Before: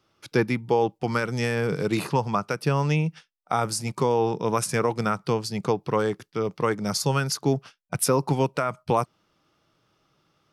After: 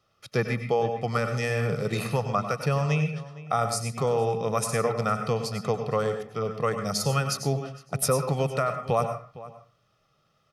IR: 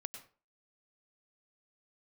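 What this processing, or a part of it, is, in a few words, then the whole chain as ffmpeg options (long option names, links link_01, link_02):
microphone above a desk: -filter_complex "[0:a]aecho=1:1:1.6:0.62[link_01];[1:a]atrim=start_sample=2205[link_02];[link_01][link_02]afir=irnorm=-1:irlink=0,asplit=2[link_03][link_04];[link_04]adelay=460.6,volume=-17dB,highshelf=frequency=4000:gain=-10.4[link_05];[link_03][link_05]amix=inputs=2:normalize=0"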